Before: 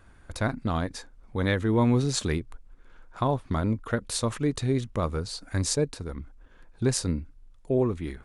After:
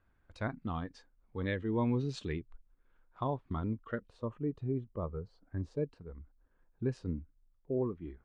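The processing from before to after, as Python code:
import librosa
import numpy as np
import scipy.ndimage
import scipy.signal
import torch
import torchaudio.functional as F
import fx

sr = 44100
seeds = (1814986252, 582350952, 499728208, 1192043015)

y = fx.noise_reduce_blind(x, sr, reduce_db=9)
y = fx.lowpass(y, sr, hz=fx.steps((0.0, 3200.0), (4.09, 1000.0), (5.77, 1700.0)), slope=12)
y = F.gain(torch.from_numpy(y), -8.5).numpy()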